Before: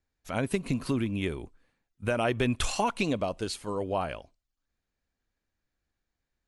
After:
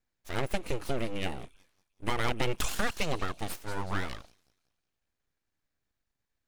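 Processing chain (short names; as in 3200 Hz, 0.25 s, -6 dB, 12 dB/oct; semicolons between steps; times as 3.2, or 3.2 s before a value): spectral repair 3.7–4.28, 3300–6600 Hz before; thin delay 0.185 s, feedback 39%, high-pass 3500 Hz, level -13 dB; full-wave rectifier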